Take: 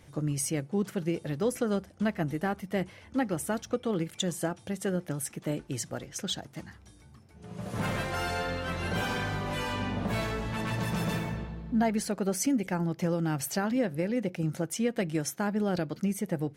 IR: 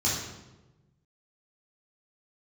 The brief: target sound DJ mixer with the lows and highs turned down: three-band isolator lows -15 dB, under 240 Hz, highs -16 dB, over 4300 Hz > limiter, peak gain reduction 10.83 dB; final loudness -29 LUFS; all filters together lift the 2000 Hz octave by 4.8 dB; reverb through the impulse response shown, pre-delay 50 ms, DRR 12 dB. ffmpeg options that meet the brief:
-filter_complex "[0:a]equalizer=f=2k:t=o:g=6.5,asplit=2[a][b];[1:a]atrim=start_sample=2205,adelay=50[c];[b][c]afir=irnorm=-1:irlink=0,volume=-22dB[d];[a][d]amix=inputs=2:normalize=0,acrossover=split=240 4300:gain=0.178 1 0.158[e][f][g];[e][f][g]amix=inputs=3:normalize=0,volume=7.5dB,alimiter=limit=-19dB:level=0:latency=1"

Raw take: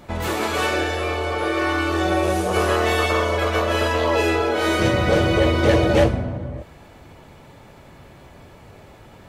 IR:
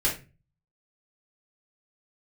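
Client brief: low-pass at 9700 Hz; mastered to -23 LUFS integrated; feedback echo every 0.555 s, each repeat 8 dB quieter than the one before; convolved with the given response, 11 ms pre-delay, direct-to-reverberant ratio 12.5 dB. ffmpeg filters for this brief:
-filter_complex "[0:a]lowpass=9.7k,aecho=1:1:555|1110|1665|2220|2775:0.398|0.159|0.0637|0.0255|0.0102,asplit=2[a][b];[1:a]atrim=start_sample=2205,adelay=11[c];[b][c]afir=irnorm=-1:irlink=0,volume=-23dB[d];[a][d]amix=inputs=2:normalize=0,volume=-3.5dB"

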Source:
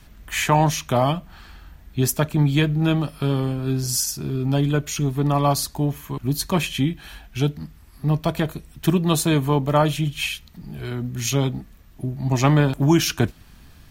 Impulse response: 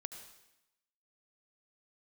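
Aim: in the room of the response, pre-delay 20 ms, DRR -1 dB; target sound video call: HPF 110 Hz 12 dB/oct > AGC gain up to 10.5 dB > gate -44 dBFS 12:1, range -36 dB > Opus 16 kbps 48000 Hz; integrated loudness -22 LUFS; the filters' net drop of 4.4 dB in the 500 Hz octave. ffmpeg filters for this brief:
-filter_complex "[0:a]equalizer=f=500:t=o:g=-6,asplit=2[a][b];[1:a]atrim=start_sample=2205,adelay=20[c];[b][c]afir=irnorm=-1:irlink=0,volume=4dB[d];[a][d]amix=inputs=2:normalize=0,highpass=110,dynaudnorm=m=10.5dB,agate=range=-36dB:threshold=-44dB:ratio=12,volume=-2dB" -ar 48000 -c:a libopus -b:a 16k

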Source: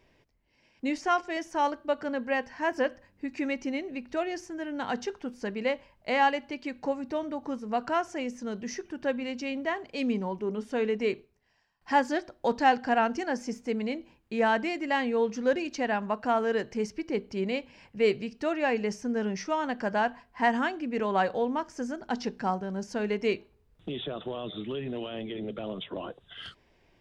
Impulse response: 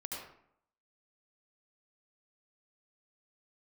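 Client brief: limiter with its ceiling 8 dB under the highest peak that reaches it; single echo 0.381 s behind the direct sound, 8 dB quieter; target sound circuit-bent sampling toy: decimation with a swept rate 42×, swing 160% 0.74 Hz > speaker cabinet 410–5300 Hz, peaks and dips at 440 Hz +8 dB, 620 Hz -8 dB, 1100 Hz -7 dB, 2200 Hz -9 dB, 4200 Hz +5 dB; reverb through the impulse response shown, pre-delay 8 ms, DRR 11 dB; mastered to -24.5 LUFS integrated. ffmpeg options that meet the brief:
-filter_complex "[0:a]alimiter=limit=-19dB:level=0:latency=1,aecho=1:1:381:0.398,asplit=2[a][b];[1:a]atrim=start_sample=2205,adelay=8[c];[b][c]afir=irnorm=-1:irlink=0,volume=-11dB[d];[a][d]amix=inputs=2:normalize=0,acrusher=samples=42:mix=1:aa=0.000001:lfo=1:lforange=67.2:lforate=0.74,highpass=410,equalizer=f=440:t=q:w=4:g=8,equalizer=f=620:t=q:w=4:g=-8,equalizer=f=1.1k:t=q:w=4:g=-7,equalizer=f=2.2k:t=q:w=4:g=-9,equalizer=f=4.2k:t=q:w=4:g=5,lowpass=f=5.3k:w=0.5412,lowpass=f=5.3k:w=1.3066,volume=10dB"

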